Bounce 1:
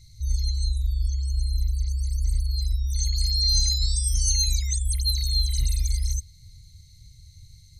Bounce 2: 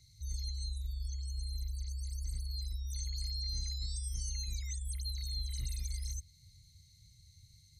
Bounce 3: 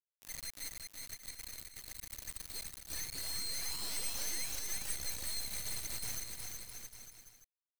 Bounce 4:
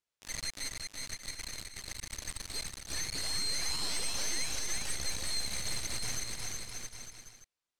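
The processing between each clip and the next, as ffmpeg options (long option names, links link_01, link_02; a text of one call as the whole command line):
ffmpeg -i in.wav -filter_complex "[0:a]highpass=frequency=110:poles=1,bandreject=frequency=650:width=12,acrossover=split=200|1700|1900[link_01][link_02][link_03][link_04];[link_04]acompressor=threshold=-36dB:ratio=6[link_05];[link_01][link_02][link_03][link_05]amix=inputs=4:normalize=0,volume=-7.5dB" out.wav
ffmpeg -i in.wav -af "aderivative,acrusher=bits=5:dc=4:mix=0:aa=0.000001,aecho=1:1:370|666|902.8|1092|1244:0.631|0.398|0.251|0.158|0.1,volume=8dB" out.wav
ffmpeg -i in.wav -filter_complex "[0:a]asplit=2[link_01][link_02];[link_02]alimiter=level_in=7.5dB:limit=-24dB:level=0:latency=1,volume=-7.5dB,volume=0dB[link_03];[link_01][link_03]amix=inputs=2:normalize=0,lowpass=7600,volume=2.5dB" out.wav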